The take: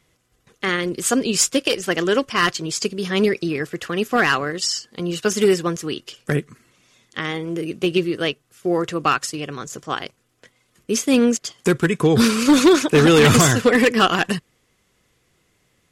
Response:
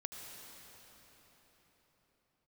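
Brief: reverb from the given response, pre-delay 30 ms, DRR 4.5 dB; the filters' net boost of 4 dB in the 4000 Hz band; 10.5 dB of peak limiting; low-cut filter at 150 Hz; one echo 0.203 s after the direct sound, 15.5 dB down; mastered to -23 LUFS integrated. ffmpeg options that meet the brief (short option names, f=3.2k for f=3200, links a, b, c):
-filter_complex "[0:a]highpass=150,equalizer=f=4k:t=o:g=5.5,alimiter=limit=-11dB:level=0:latency=1,aecho=1:1:203:0.168,asplit=2[a][b];[1:a]atrim=start_sample=2205,adelay=30[c];[b][c]afir=irnorm=-1:irlink=0,volume=-3dB[d];[a][d]amix=inputs=2:normalize=0,volume=-2dB"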